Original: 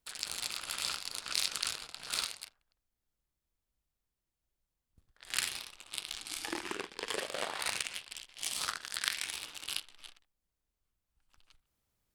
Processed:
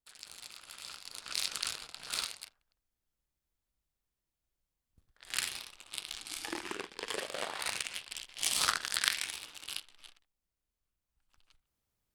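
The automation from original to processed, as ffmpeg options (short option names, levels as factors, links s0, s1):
-af "volume=2.24,afade=t=in:st=0.87:d=0.65:silence=0.316228,afade=t=in:st=7.83:d=0.94:silence=0.398107,afade=t=out:st=8.77:d=0.62:silence=0.316228"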